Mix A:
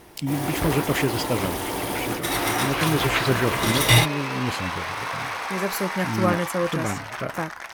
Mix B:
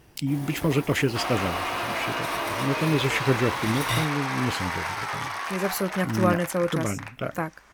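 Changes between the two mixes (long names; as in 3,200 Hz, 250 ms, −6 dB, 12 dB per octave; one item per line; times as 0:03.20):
first sound −11.5 dB
second sound: entry −1.20 s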